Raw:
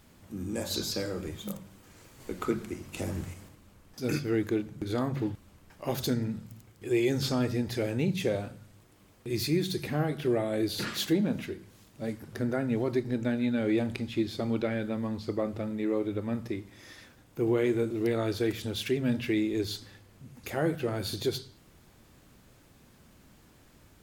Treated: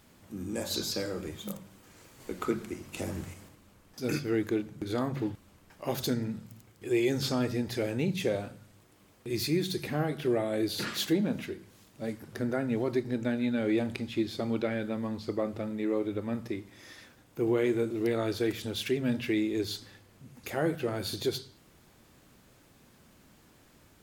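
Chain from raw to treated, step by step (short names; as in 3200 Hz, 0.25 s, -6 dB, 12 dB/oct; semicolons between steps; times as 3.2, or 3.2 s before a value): low shelf 110 Hz -6.5 dB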